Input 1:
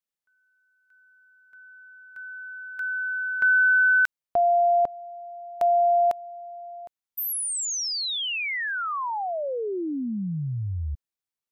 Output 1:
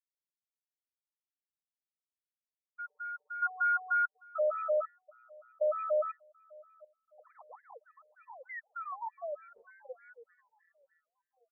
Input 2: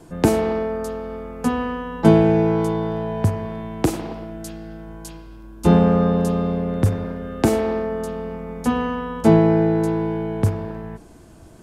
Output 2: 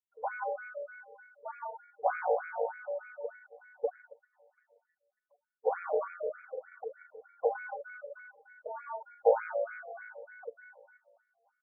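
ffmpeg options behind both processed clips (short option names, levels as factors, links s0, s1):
-filter_complex "[0:a]aeval=exprs='max(val(0),0)':c=same,afreqshift=-86,equalizer=f=370:t=o:w=0.3:g=13.5,afftfilt=real='re*gte(hypot(re,im),0.126)':imag='im*gte(hypot(re,im),0.126)':win_size=1024:overlap=0.75,asplit=2[s0][s1];[s1]acrusher=samples=24:mix=1:aa=0.000001,volume=0.316[s2];[s0][s2]amix=inputs=2:normalize=0,highpass=f=280:w=0.5412,highpass=f=280:w=1.3066,equalizer=f=290:t=q:w=4:g=-8,equalizer=f=440:t=q:w=4:g=10,equalizer=f=630:t=q:w=4:g=-5,equalizer=f=1200:t=q:w=4:g=-4,equalizer=f=2100:t=q:w=4:g=-7,lowpass=f=2300:w=0.5412,lowpass=f=2300:w=1.3066,asplit=2[s3][s4];[s4]adelay=733,lowpass=f=1200:p=1,volume=0.0668,asplit=2[s5][s6];[s6]adelay=733,lowpass=f=1200:p=1,volume=0.43,asplit=2[s7][s8];[s8]adelay=733,lowpass=f=1200:p=1,volume=0.43[s9];[s5][s7][s9]amix=inputs=3:normalize=0[s10];[s3][s10]amix=inputs=2:normalize=0,afftfilt=real='re*between(b*sr/1024,620*pow(1800/620,0.5+0.5*sin(2*PI*3.3*pts/sr))/1.41,620*pow(1800/620,0.5+0.5*sin(2*PI*3.3*pts/sr))*1.41)':imag='im*between(b*sr/1024,620*pow(1800/620,0.5+0.5*sin(2*PI*3.3*pts/sr))/1.41,620*pow(1800/620,0.5+0.5*sin(2*PI*3.3*pts/sr))*1.41)':win_size=1024:overlap=0.75"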